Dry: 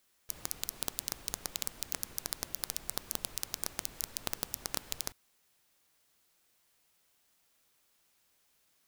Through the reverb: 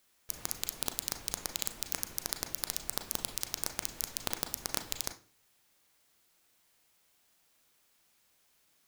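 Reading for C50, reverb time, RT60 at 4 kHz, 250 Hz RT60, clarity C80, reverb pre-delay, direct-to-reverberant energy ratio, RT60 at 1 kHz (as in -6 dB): 13.5 dB, 0.40 s, 0.40 s, 0.45 s, 19.5 dB, 33 ms, 7.0 dB, 0.35 s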